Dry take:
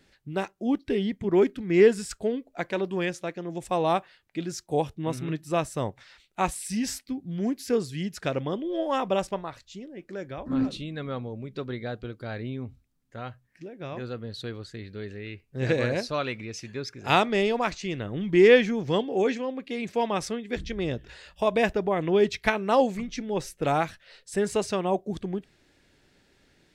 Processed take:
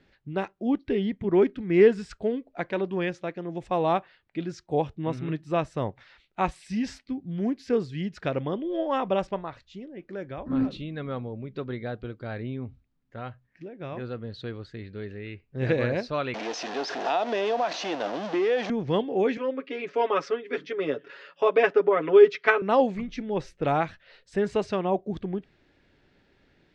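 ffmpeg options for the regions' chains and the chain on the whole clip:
-filter_complex "[0:a]asettb=1/sr,asplit=3[a][b][c];[a]atrim=end=16.344[d];[b]atrim=start=16.34:end=18.7,asetpts=PTS-STARTPTS,afade=t=in:d=0.004:c=qsin,afade=t=out:st=2.356:d=0.004:c=qsin,aeval=exprs='val(0)+0.5*0.0668*sgn(val(0))':c=same,highpass=f=300:w=0.5412,highpass=f=300:w=1.3066,equalizer=f=380:t=q:w=4:g=-6,equalizer=f=700:t=q:w=4:g=9,equalizer=f=1.3k:t=q:w=4:g=-3,equalizer=f=2.2k:t=q:w=4:g=-7,equalizer=f=5.9k:t=q:w=4:g=4,lowpass=f=6.8k:w=0.5412,lowpass=f=6.8k:w=1.3066,acompressor=threshold=-22dB:ratio=4:attack=3.2:release=140:knee=1:detection=peak[e];[c]atrim=start=18.696[f];[d][e]acrossfade=d=0.004:c1=hsin:c2=qsin[g];[g][f]acrossfade=d=0.004:c1=qsin:c2=hsin,asettb=1/sr,asplit=3[h][i][j];[h]atrim=end=19.374[k];[i]atrim=start=19.37:end=22.62,asetpts=PTS-STARTPTS,afade=t=in:d=0.004:c=qsin,afade=t=out:st=3.246:d=0.004:c=qsin,highpass=f=230:w=0.5412,highpass=f=230:w=1.3066,equalizer=f=230:t=q:w=4:g=-8,equalizer=f=460:t=q:w=4:g=5,equalizer=f=760:t=q:w=4:g=-7,equalizer=f=1.3k:t=q:w=4:g=8,equalizer=f=3.9k:t=q:w=4:g=-5,lowpass=f=6.5k:w=0.5412,lowpass=f=6.5k:w=1.3066,aecho=1:1:7.2:0.89,atrim=end_sample=143325[l];[j]atrim=start=22.616[m];[k][l]acrossfade=d=0.004:c1=hsin:c2=qsin[n];[n][m]acrossfade=d=0.004:c1=qsin:c2=hsin,lowpass=4.6k,aemphasis=mode=reproduction:type=cd"

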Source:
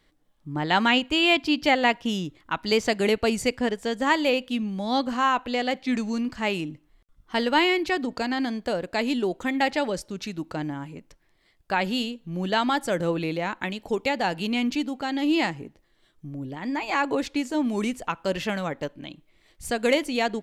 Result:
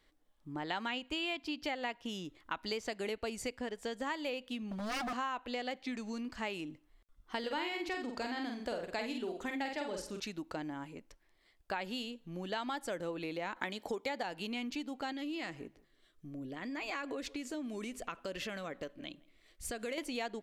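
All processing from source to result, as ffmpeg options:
-filter_complex "[0:a]asettb=1/sr,asplit=3[a][b][c];[a]atrim=end=4.714[d];[b]atrim=start=4.71:end=5.13,asetpts=PTS-STARTPTS,afade=t=in:d=0.004:c=qsin,afade=t=out:st=0.416:d=0.004:c=qsin,equalizer=f=250:w=2.3:g=14.5,aeval=exprs='0.0794*(abs(mod(val(0)/0.0794+3,4)-2)-1)':c=same[e];[c]atrim=start=5.126[f];[d][e]acrossfade=d=0.004:c1=hsin:c2=qsin[g];[g][f]acrossfade=d=0.004:c1=qsin:c2=hsin,asettb=1/sr,asplit=3[h][i][j];[h]atrim=end=7.394[k];[i]atrim=start=7.39:end=10.2,asetpts=PTS-STARTPTS,afade=t=in:d=0.004:c=qsin,afade=t=out:st=2.806:d=0.004:c=qsin,asplit=2[l][m];[m]adelay=48,volume=-4dB[n];[l][n]amix=inputs=2:normalize=0,atrim=end_sample=123921,aecho=1:1:89|178|267:0.133|0.0533|0.0213,atrim=end_sample=123921[o];[j]atrim=start=10.196[p];[k][o]acrossfade=d=0.004:c1=hsin:c2=qsin[q];[q][p]acrossfade=d=0.004:c1=qsin:c2=hsin,asettb=1/sr,asplit=3[r][s][t];[r]atrim=end=13.564[u];[s]atrim=start=13.56:end=14.23,asetpts=PTS-STARTPTS,afade=t=in:d=0.004:c=qsin,afade=t=out:st=0.666:d=0.004:c=qsin,highpass=f=170:p=1,bandreject=f=2.7k:w=6.8,acontrast=52[v];[t]atrim=start=14.226[w];[u][v]acrossfade=d=0.004:c1=hsin:c2=qsin[x];[x][w]acrossfade=d=0.004:c1=qsin:c2=hsin,asettb=1/sr,asplit=3[y][z][aa];[y]atrim=end=15.124[ab];[z]atrim=start=15.12:end=19.98,asetpts=PTS-STARTPTS,afade=t=in:d=0.004:c=qsin,afade=t=out:st=4.856:d=0.004:c=qsin,equalizer=f=880:w=7.2:g=-13,acompressor=threshold=-30dB:ratio=3:attack=3.2:release=140:knee=1:detection=peak,asplit=2[ac][ad];[ad]adelay=165,lowpass=f=1.5k:p=1,volume=-22dB,asplit=2[ae][af];[af]adelay=165,lowpass=f=1.5k:p=1,volume=0.25[ag];[ac][ae][ag]amix=inputs=3:normalize=0,atrim=end_sample=214326[ah];[aa]atrim=start=19.976[ai];[ab][ah]acrossfade=d=0.004:c1=hsin:c2=qsin[aj];[aj][ai]acrossfade=d=0.004:c1=qsin:c2=hsin,acompressor=threshold=-29dB:ratio=6,equalizer=f=140:t=o:w=1.2:g=-8.5,volume=-5dB"

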